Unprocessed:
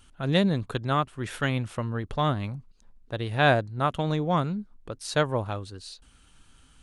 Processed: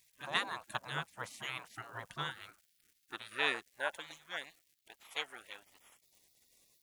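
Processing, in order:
high-pass filter sweep 340 Hz → 1,700 Hz, 0:02.15–0:04.25
surface crackle 500 per second −52 dBFS
graphic EQ with 10 bands 125 Hz −4 dB, 1,000 Hz +10 dB, 2,000 Hz −5 dB, 4,000 Hz −8 dB
gate on every frequency bin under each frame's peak −20 dB weak
level +1.5 dB

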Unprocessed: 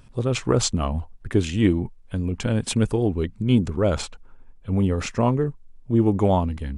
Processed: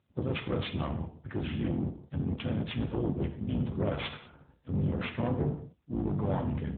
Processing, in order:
sub-octave generator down 2 octaves, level +4 dB
noise gate −42 dBFS, range −28 dB
reversed playback
downward compressor 5 to 1, threshold −31 dBFS, peak gain reduction 19.5 dB
reversed playback
soft clipping −30 dBFS, distortion −14 dB
pitch-shifted copies added −12 semitones −6 dB, −3 semitones −6 dB, +3 semitones −15 dB
in parallel at −9 dB: asymmetric clip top −44 dBFS, bottom −26.5 dBFS
on the sum: reverb whose tail is shaped and stops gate 230 ms falling, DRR 5 dB
level +4 dB
AMR narrowband 12.2 kbit/s 8,000 Hz

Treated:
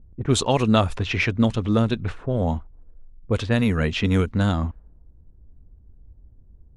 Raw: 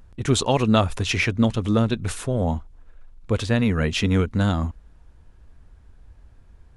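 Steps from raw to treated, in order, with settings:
low-pass that shuts in the quiet parts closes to 310 Hz, open at −15.5 dBFS
0:02.29–0:04.31: high-shelf EQ 8,800 Hz +11.5 dB

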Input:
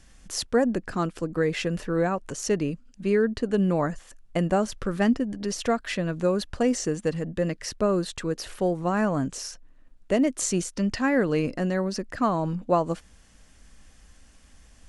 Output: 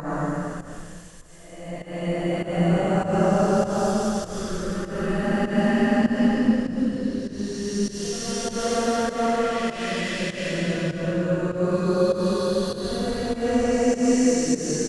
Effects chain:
extreme stretch with random phases 5×, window 0.50 s, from 0:03.88
fake sidechain pumping 99 BPM, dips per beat 1, −15 dB, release 198 ms
echo with shifted repeats 224 ms, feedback 63%, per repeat −35 Hz, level −19 dB
level +3 dB

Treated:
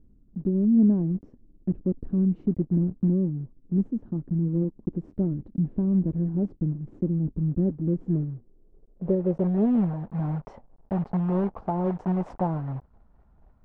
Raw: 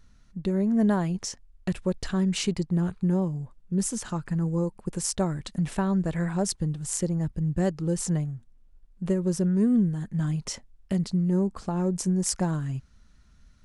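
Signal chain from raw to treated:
one scale factor per block 3 bits
low-pass filter sweep 290 Hz → 810 Hz, 0:07.88–0:10.09
level −1.5 dB

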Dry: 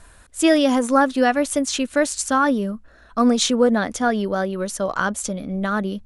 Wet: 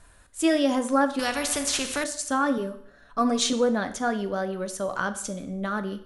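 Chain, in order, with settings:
0:02.57–0:03.53: comb filter 7 ms, depth 75%
dense smooth reverb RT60 0.62 s, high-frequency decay 0.95×, DRR 9 dB
0:01.19–0:02.04: every bin compressed towards the loudest bin 2 to 1
level −6.5 dB

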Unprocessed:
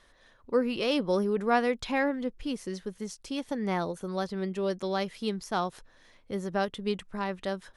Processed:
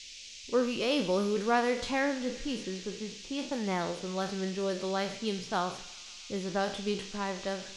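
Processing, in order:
peak hold with a decay on every bin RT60 0.43 s
low-pass that shuts in the quiet parts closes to 350 Hz, open at −26.5 dBFS
on a send: delay with a high-pass on its return 133 ms, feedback 80%, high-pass 1,900 Hz, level −16.5 dB
on the sum: noise in a band 2,300–6,700 Hz −45 dBFS
four-comb reverb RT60 1.1 s, combs from 32 ms, DRR 18.5 dB
level −2.5 dB

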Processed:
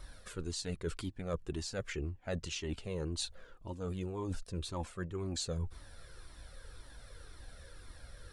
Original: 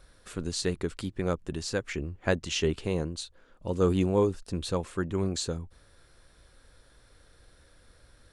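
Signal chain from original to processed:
reversed playback
downward compressor 12 to 1, threshold −38 dBFS, peak gain reduction 19.5 dB
reversed playback
flanger whose copies keep moving one way falling 1.9 Hz
level +8.5 dB

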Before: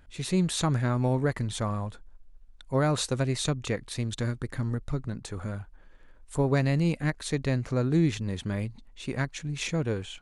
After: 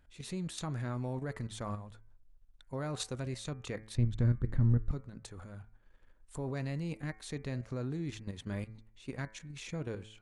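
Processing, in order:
output level in coarse steps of 10 dB
0:03.95–0:04.91: RIAA equalisation playback
hum removal 108.7 Hz, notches 22
level −6 dB

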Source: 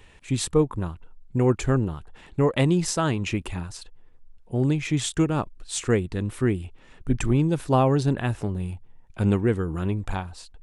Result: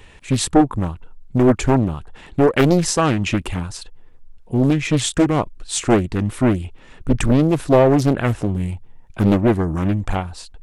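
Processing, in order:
highs frequency-modulated by the lows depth 0.98 ms
level +7 dB

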